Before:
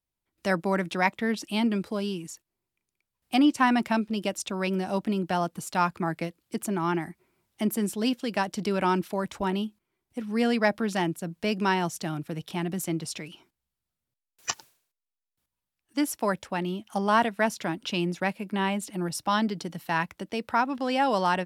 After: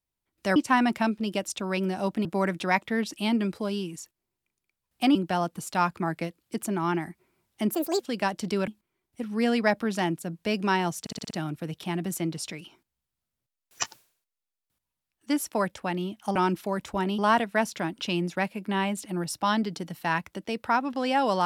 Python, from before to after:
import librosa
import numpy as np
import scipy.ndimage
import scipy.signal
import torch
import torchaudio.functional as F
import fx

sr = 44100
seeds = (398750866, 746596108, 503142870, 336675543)

y = fx.edit(x, sr, fx.move(start_s=3.46, length_s=1.69, to_s=0.56),
    fx.speed_span(start_s=7.74, length_s=0.41, speed=1.55),
    fx.move(start_s=8.82, length_s=0.83, to_s=17.03),
    fx.stutter(start_s=11.98, slice_s=0.06, count=6), tone=tone)